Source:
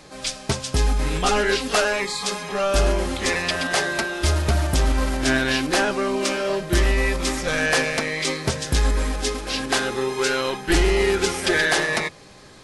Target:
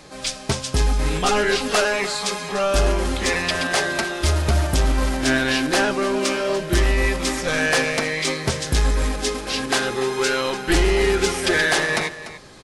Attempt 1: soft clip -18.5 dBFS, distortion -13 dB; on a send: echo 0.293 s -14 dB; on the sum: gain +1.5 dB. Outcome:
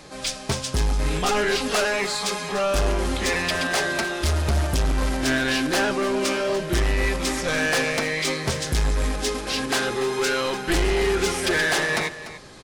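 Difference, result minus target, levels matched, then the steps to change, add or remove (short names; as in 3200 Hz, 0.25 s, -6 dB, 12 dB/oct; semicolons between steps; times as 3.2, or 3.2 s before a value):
soft clip: distortion +13 dB
change: soft clip -9 dBFS, distortion -26 dB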